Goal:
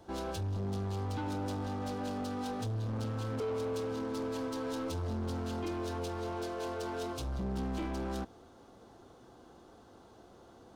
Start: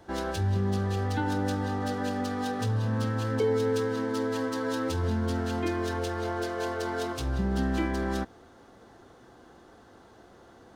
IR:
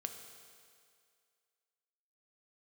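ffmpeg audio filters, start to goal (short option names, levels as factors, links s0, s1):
-af "asoftclip=type=tanh:threshold=0.0335,equalizer=f=1800:w=2.4:g=-8.5,volume=0.75"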